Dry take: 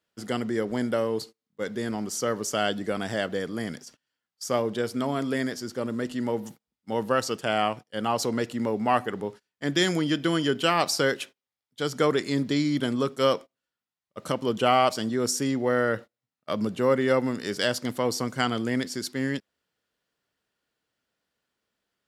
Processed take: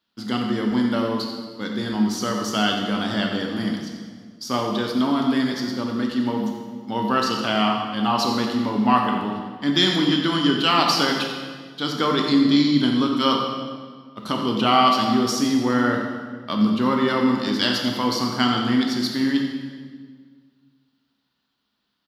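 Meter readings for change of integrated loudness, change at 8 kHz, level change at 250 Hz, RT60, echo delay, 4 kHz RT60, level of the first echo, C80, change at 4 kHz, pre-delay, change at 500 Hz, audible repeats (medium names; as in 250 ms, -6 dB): +5.5 dB, -0.5 dB, +8.5 dB, 1.7 s, 90 ms, 1.4 s, -10.0 dB, 4.0 dB, +9.0 dB, 8 ms, -0.5 dB, 1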